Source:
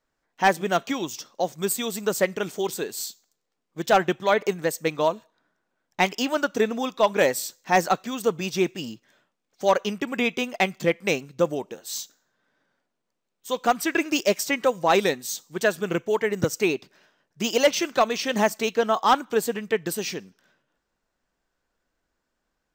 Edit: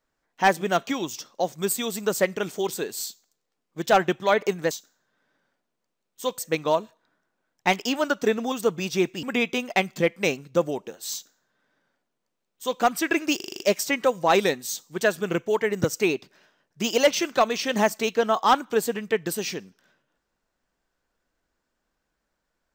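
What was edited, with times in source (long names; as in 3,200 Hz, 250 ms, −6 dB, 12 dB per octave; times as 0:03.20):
0:06.85–0:08.13: remove
0:08.84–0:10.07: remove
0:11.97–0:13.64: duplicate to 0:04.71
0:14.20: stutter 0.04 s, 7 plays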